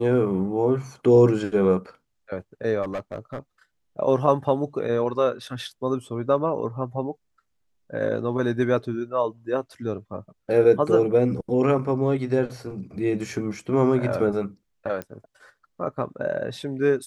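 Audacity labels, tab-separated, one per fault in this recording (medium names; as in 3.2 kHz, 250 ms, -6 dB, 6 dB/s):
2.820000	3.380000	clipped -25 dBFS
15.020000	15.020000	pop -18 dBFS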